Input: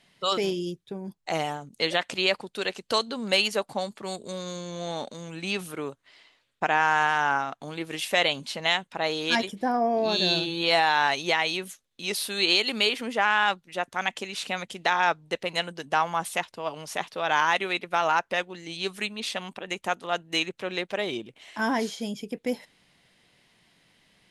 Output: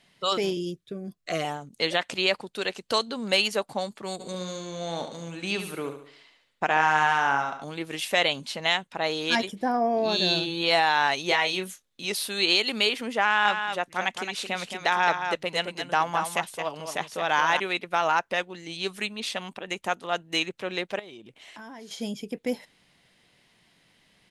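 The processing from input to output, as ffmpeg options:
ffmpeg -i in.wav -filter_complex "[0:a]asettb=1/sr,asplit=3[link_01][link_02][link_03];[link_01]atrim=end=0.574[link_04];[link_02]atrim=start=0.57:end=1.45,asetpts=PTS-STARTPTS,afade=type=in:duration=0.004:curve=qsin,afade=type=out:start_time=0.876:duration=0.004:curve=qsin,asuperstop=centerf=880:order=20:qfactor=3.2[link_05];[link_03]atrim=start=1.446[link_06];[link_04][link_05]acrossfade=duration=0.004:curve1=hsin:curve2=qsin[link_07];[link_07][link_06]acrossfade=duration=0.004:curve1=qsin:curve2=hsin,asplit=3[link_08][link_09][link_10];[link_08]afade=type=out:start_time=4.19:duration=0.02[link_11];[link_09]aecho=1:1:71|142|213|284|355:0.376|0.169|0.0761|0.0342|0.0154,afade=type=in:start_time=4.19:duration=0.02,afade=type=out:start_time=7.63:duration=0.02[link_12];[link_10]afade=type=in:start_time=7.63:duration=0.02[link_13];[link_11][link_12][link_13]amix=inputs=3:normalize=0,asettb=1/sr,asplit=3[link_14][link_15][link_16];[link_14]atrim=end=11.284[link_17];[link_15]atrim=start=11.28:end=12.05,asetpts=PTS-STARTPTS,afade=type=in:duration=0.004:curve=qsin,afade=type=out:start_time=0.766:duration=0.004:curve=qsin,asplit=2[link_18][link_19];[link_19]adelay=27,volume=-6dB[link_20];[link_18][link_20]amix=inputs=2:normalize=0,atrim=end_sample=33957[link_21];[link_16]atrim=start=12.046[link_22];[link_17][link_21]acrossfade=duration=0.004:curve1=hsin:curve2=qsin[link_23];[link_23][link_22]acrossfade=duration=0.004:curve1=qsin:curve2=hsin,asettb=1/sr,asplit=3[link_24][link_25][link_26];[link_24]atrim=end=13.234[link_27];[link_25]atrim=start=13.23:end=17.6,asetpts=PTS-STARTPTS,afade=type=in:duration=0.004:curve=qsin,afade=type=out:start_time=4.366:duration=0.004:curve=qsin,aecho=1:1:219:0.447,atrim=end_sample=192717[link_28];[link_26]atrim=start=17.596[link_29];[link_27][link_28]acrossfade=duration=0.004:curve1=hsin:curve2=qsin[link_30];[link_30][link_29]acrossfade=duration=0.004:curve1=qsin:curve2=hsin,asettb=1/sr,asplit=3[link_31][link_32][link_33];[link_31]atrim=end=20.994[link_34];[link_32]atrim=start=20.99:end=21.91,asetpts=PTS-STARTPTS,afade=type=in:duration=0.004:curve=qsin,afade=type=out:start_time=0.916:duration=0.004:curve=qsin,acompressor=threshold=-42dB:ratio=5:attack=3.2:release=140:knee=1:detection=peak[link_35];[link_33]atrim=start=21.906[link_36];[link_34][link_35]acrossfade=duration=0.004:curve1=hsin:curve2=qsin[link_37];[link_37][link_36]acrossfade=duration=0.004:curve1=qsin:curve2=hsin" out.wav

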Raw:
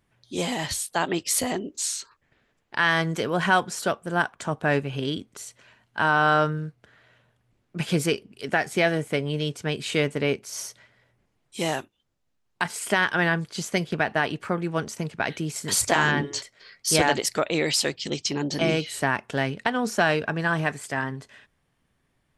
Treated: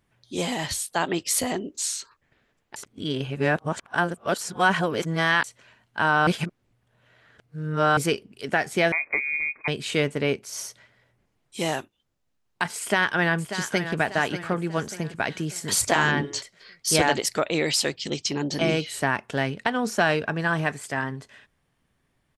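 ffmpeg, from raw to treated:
ffmpeg -i in.wav -filter_complex "[0:a]asettb=1/sr,asplit=3[link_01][link_02][link_03];[link_01]atrim=end=8.924[link_04];[link_02]atrim=start=8.92:end=9.68,asetpts=PTS-STARTPTS,afade=type=in:duration=0.004:curve=qsin,afade=type=out:start_time=0.756:duration=0.004:curve=qsin,lowpass=frequency=2200:width_type=q:width=0.5098,lowpass=frequency=2200:width_type=q:width=0.6013,lowpass=frequency=2200:width_type=q:width=0.9,lowpass=frequency=2200:width_type=q:width=2.563,afreqshift=-2600[link_05];[link_03]atrim=start=9.676[link_06];[link_04][link_05]acrossfade=duration=0.004:curve1=hsin:curve2=qsin[link_07];[link_07][link_06]acrossfade=duration=0.004:curve1=qsin:curve2=hsin,asplit=2[link_08][link_09];[link_09]afade=type=in:start_time=12.79:duration=0.01,afade=type=out:start_time=13.97:duration=0.01,aecho=0:1:590|1180|1770|2360|2950:0.316228|0.142302|0.0640361|0.0288163|0.0129673[link_10];[link_08][link_10]amix=inputs=2:normalize=0,asplit=5[link_11][link_12][link_13][link_14][link_15];[link_11]atrim=end=2.762[link_16];[link_12]atrim=start=2.758:end=5.442,asetpts=PTS-STARTPTS,areverse[link_17];[link_13]atrim=start=5.438:end=6.272[link_18];[link_14]atrim=start=6.268:end=7.972,asetpts=PTS-STARTPTS,areverse[link_19];[link_15]atrim=start=7.968[link_20];[link_16][link_17]acrossfade=duration=0.004:curve1=hsin:curve2=hsin[link_21];[link_21][link_18]acrossfade=duration=0.004:curve1=hsin:curve2=hsin[link_22];[link_22][link_19]acrossfade=duration=0.004:curve1=hsin:curve2=hsin[link_23];[link_23][link_20]acrossfade=duration=0.004:curve1=hsin:curve2=hsin" out.wav

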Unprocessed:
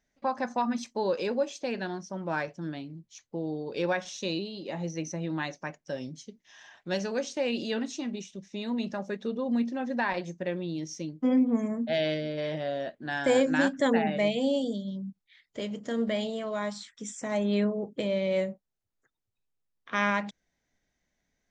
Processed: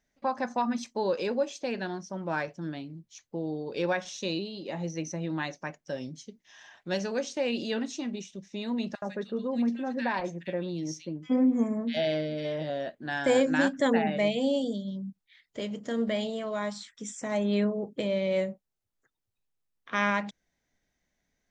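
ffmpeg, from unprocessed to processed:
ffmpeg -i in.wav -filter_complex "[0:a]asettb=1/sr,asplit=3[link_01][link_02][link_03];[link_01]atrim=end=8.954[link_04];[link_02]atrim=start=8.95:end=12.7,asetpts=PTS-STARTPTS,afade=type=in:duration=0.004:curve=qsin,afade=type=out:start_time=3.746:duration=0.004:curve=qsin,acrossover=split=1900[link_05][link_06];[link_05]adelay=70[link_07];[link_07][link_06]amix=inputs=2:normalize=0,atrim=end_sample=165375[link_08];[link_03]atrim=start=12.696[link_09];[link_04][link_08]acrossfade=duration=0.004:curve1=hsin:curve2=qsin[link_10];[link_10][link_09]acrossfade=duration=0.004:curve1=qsin:curve2=hsin" out.wav

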